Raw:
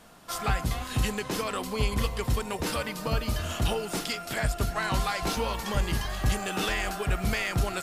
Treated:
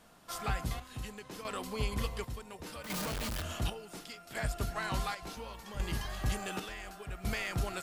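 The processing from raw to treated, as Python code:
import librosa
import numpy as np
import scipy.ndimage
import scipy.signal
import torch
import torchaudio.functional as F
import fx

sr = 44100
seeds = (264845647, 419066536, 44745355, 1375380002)

y = fx.clip_1bit(x, sr, at=(2.84, 3.42))
y = fx.chopper(y, sr, hz=0.69, depth_pct=60, duty_pct=55)
y = y * librosa.db_to_amplitude(-7.0)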